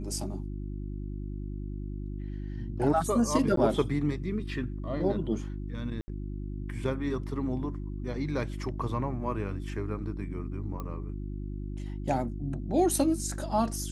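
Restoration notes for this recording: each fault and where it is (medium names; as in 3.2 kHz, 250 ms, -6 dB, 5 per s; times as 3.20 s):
hum 50 Hz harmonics 7 -36 dBFS
3.56–3.57 s: dropout 13 ms
6.01–6.08 s: dropout 70 ms
10.80 s: pop -24 dBFS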